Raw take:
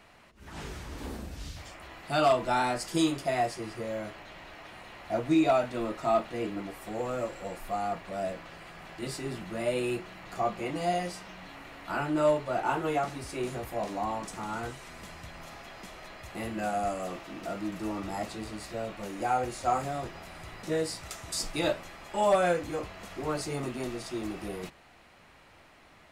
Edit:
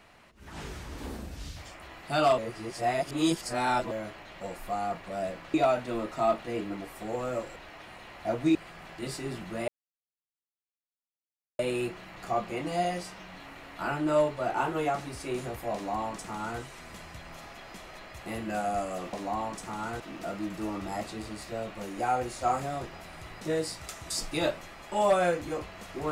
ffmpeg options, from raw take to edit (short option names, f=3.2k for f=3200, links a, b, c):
-filter_complex "[0:a]asplit=10[a][b][c][d][e][f][g][h][i][j];[a]atrim=end=2.382[k];[b]atrim=start=2.378:end=3.912,asetpts=PTS-STARTPTS,areverse[l];[c]atrim=start=3.908:end=4.412[m];[d]atrim=start=7.418:end=8.552[n];[e]atrim=start=5.398:end=7.422[o];[f]atrim=start=4.408:end=5.402[p];[g]atrim=start=8.548:end=9.68,asetpts=PTS-STARTPTS,afade=t=out:st=1.128:d=0.004:c=hsin,apad=pad_dur=1.91[q];[h]atrim=start=9.68:end=17.222,asetpts=PTS-STARTPTS,afade=t=in:d=0.004:c=hsin[r];[i]atrim=start=13.828:end=14.702[s];[j]atrim=start=17.218[t];[k][l]acrossfade=d=0.004:c1=hsin:c2=hsin[u];[u][m]acrossfade=d=0.004:c1=hsin:c2=hsin[v];[v][n]acrossfade=d=0.004:c1=hsin:c2=hsin[w];[w][o]acrossfade=d=0.004:c1=hsin:c2=hsin[x];[x][p]acrossfade=d=0.004:c1=hsin:c2=hsin[y];[q][r]concat=n=2:v=0:a=1[z];[y][z]acrossfade=d=0.004:c1=hsin:c2=hsin[aa];[aa][s]acrossfade=d=0.004:c1=hsin:c2=hsin[ab];[ab][t]acrossfade=d=0.004:c1=hsin:c2=hsin"